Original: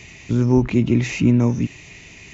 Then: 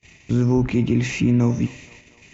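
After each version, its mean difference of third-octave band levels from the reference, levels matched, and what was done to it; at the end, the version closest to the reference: 2.5 dB: gate -40 dBFS, range -33 dB; de-hum 65.56 Hz, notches 40; limiter -9.5 dBFS, peak gain reduction 4.5 dB; band-limited delay 0.236 s, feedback 55%, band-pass 1000 Hz, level -18 dB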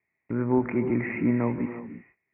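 8.5 dB: steep low-pass 2200 Hz 72 dB/oct; gate -34 dBFS, range -32 dB; HPF 580 Hz 6 dB/oct; non-linear reverb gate 0.37 s rising, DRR 9 dB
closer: first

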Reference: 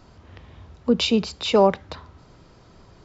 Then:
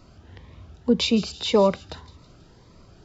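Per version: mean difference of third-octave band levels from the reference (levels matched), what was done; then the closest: 1.5 dB: thin delay 0.162 s, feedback 48%, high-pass 4400 Hz, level -10.5 dB; cascading phaser rising 1.8 Hz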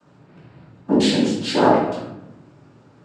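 6.5 dB: noise vocoder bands 8; shoebox room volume 310 m³, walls mixed, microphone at 2.7 m; mismatched tape noise reduction decoder only; gain -6 dB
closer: first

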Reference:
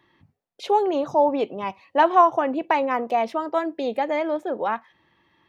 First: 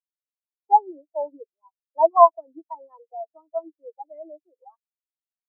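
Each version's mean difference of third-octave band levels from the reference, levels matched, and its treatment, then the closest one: 14.5 dB: steep high-pass 220 Hz; comb 6.2 ms, depth 37%; spectral expander 4:1; gain +3 dB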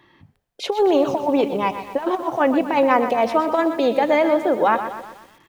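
7.5 dB: negative-ratio compressor -22 dBFS, ratio -0.5; frequency-shifting echo 0.13 s, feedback 41%, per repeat -67 Hz, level -23.5 dB; lo-fi delay 0.123 s, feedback 55%, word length 8-bit, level -10 dB; gain +5 dB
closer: second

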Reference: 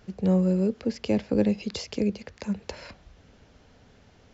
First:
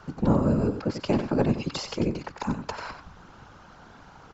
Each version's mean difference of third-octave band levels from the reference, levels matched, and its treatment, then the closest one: 6.0 dB: band shelf 1100 Hz +12 dB 1.1 oct; in parallel at -2 dB: compressor, threshold -38 dBFS, peak gain reduction 19.5 dB; on the sum: whisperiser; echo 92 ms -9.5 dB; gain -1.5 dB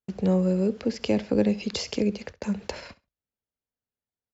4.0 dB: gate -42 dBFS, range -46 dB; low shelf 210 Hz -4.5 dB; in parallel at -0.5 dB: compressor, threshold -33 dBFS, peak gain reduction 14 dB; on the sum: feedback echo 67 ms, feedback 16%, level -19 dB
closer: second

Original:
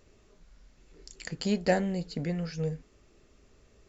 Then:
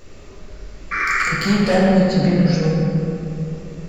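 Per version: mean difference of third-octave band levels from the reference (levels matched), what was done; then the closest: 8.5 dB: in parallel at +0.5 dB: compressor, threshold -43 dBFS, peak gain reduction 21.5 dB; on the sum: painted sound noise, 0.91–1.23, 1100–2400 Hz -31 dBFS; soft clip -24 dBFS, distortion -11 dB; shoebox room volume 120 m³, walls hard, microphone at 0.73 m; gain +8 dB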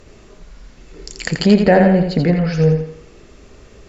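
3.5 dB: treble ducked by the level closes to 2400 Hz, closed at -28.5 dBFS; high shelf 6000 Hz -5 dB; thinning echo 84 ms, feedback 43%, high-pass 200 Hz, level -5.5 dB; maximiser +18 dB; gain -1 dB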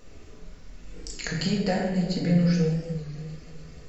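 5.5 dB: compressor 3:1, threshold -37 dBFS, peak gain reduction 13.5 dB; on a send: thinning echo 0.295 s, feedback 78%, high-pass 360 Hz, level -20 dB; on the sum: shoebox room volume 520 m³, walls mixed, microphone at 1.9 m; record warp 33 1/3 rpm, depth 100 cents; gain +7 dB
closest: second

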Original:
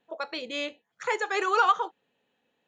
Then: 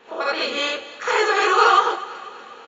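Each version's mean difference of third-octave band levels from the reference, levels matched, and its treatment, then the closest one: 7.0 dB: per-bin compression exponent 0.6; on a send: feedback echo 0.244 s, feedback 53%, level -17 dB; on the sum: non-linear reverb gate 0.1 s rising, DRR -7 dB; downsampling 16000 Hz; gain -1 dB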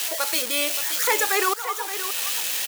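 13.0 dB: switching spikes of -19.5 dBFS; auto swell 0.688 s; low shelf 270 Hz -6 dB; echo 0.573 s -11.5 dB; gain +5.5 dB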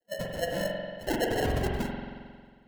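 17.5 dB: sine-wave speech; negative-ratio compressor -31 dBFS, ratio -1; sample-and-hold 37×; spring tank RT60 1.8 s, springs 45 ms, chirp 80 ms, DRR 0 dB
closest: first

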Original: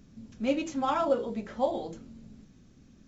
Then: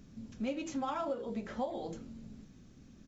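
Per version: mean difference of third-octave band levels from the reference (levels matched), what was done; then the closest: 4.5 dB: compressor 6:1, threshold -33 dBFS, peak gain reduction 12.5 dB; speakerphone echo 90 ms, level -20 dB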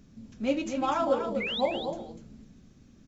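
2.5 dB: painted sound rise, 1.4–1.61, 2000–4100 Hz -33 dBFS; on a send: echo 0.246 s -7.5 dB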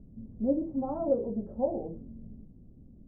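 7.0 dB: inverse Chebyshev low-pass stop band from 2900 Hz, stop band 70 dB; low shelf 100 Hz +9 dB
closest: second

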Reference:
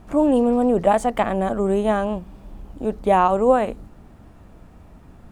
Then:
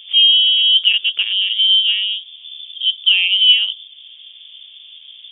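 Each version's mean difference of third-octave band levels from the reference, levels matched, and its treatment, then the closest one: 19.0 dB: EQ curve 180 Hz 0 dB, 350 Hz +13 dB, 1900 Hz -10 dB; in parallel at -2 dB: compressor, threshold -36 dBFS, peak gain reduction 28.5 dB; on the sum: inverted band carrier 3500 Hz; gain -3 dB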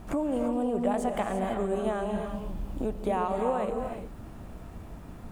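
8.5 dB: compressor 4:1, threshold -30 dBFS, peak gain reduction 16.5 dB; high shelf 8900 Hz +5.5 dB; non-linear reverb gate 0.37 s rising, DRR 3.5 dB; gain +1 dB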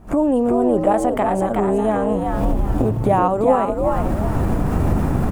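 11.0 dB: recorder AGC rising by 77 dB/s; bell 3600 Hz -8 dB 1.9 oct; on a send: frequency-shifting echo 0.371 s, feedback 35%, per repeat +76 Hz, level -4.5 dB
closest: second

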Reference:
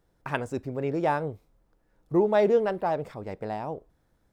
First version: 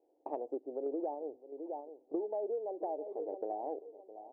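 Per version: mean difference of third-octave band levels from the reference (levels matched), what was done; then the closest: 11.0 dB: random-step tremolo; elliptic band-pass 300–790 Hz, stop band 40 dB; feedback echo 0.661 s, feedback 24%, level -19 dB; compressor 10:1, threshold -39 dBFS, peak gain reduction 18.5 dB; gain +5 dB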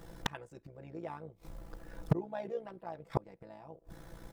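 5.5 dB: comb 6 ms, depth 99%; flipped gate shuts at -28 dBFS, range -36 dB; wavefolder -32.5 dBFS; AM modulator 60 Hz, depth 45%; gain +18 dB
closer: second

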